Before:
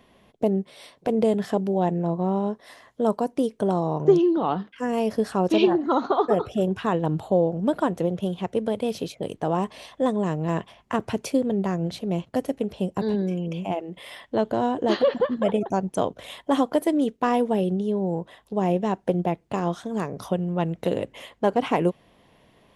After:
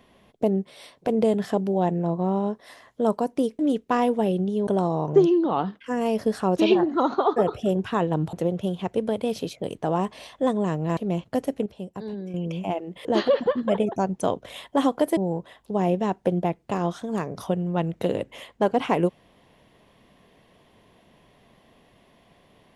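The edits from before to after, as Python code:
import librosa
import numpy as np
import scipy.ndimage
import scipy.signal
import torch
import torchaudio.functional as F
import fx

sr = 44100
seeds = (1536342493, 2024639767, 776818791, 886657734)

y = fx.edit(x, sr, fx.cut(start_s=7.25, length_s=0.67),
    fx.cut(start_s=10.56, length_s=1.42),
    fx.clip_gain(start_s=12.67, length_s=0.68, db=-9.0),
    fx.cut(start_s=14.06, length_s=0.73),
    fx.move(start_s=16.91, length_s=1.08, to_s=3.59), tone=tone)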